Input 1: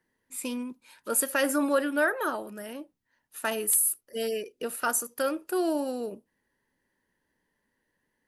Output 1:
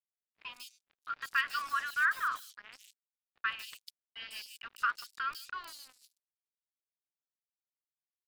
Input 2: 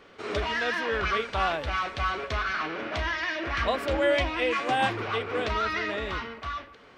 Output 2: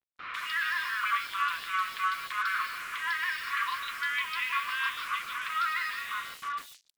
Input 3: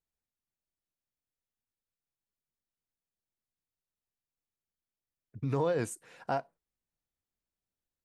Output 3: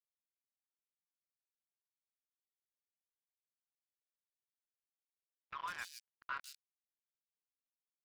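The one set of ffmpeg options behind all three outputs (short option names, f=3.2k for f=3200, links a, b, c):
-filter_complex "[0:a]afftfilt=real='re*between(b*sr/4096,970,5500)':imag='im*between(b*sr/4096,970,5500)':win_size=4096:overlap=0.75,acrusher=bits=6:mix=0:aa=0.5,acrossover=split=3500[a][b];[b]adelay=150[c];[a][c]amix=inputs=2:normalize=0"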